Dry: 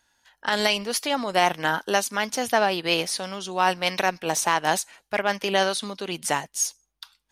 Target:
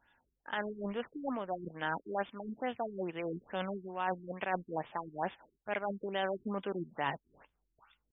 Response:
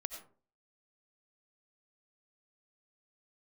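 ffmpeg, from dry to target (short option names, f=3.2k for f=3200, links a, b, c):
-af "areverse,acompressor=threshold=-31dB:ratio=6,areverse,atempo=0.9,acrusher=bits=4:mode=log:mix=0:aa=0.000001,afftfilt=real='re*lt(b*sr/1024,390*pow(3700/390,0.5+0.5*sin(2*PI*2.3*pts/sr)))':imag='im*lt(b*sr/1024,390*pow(3700/390,0.5+0.5*sin(2*PI*2.3*pts/sr)))':win_size=1024:overlap=0.75"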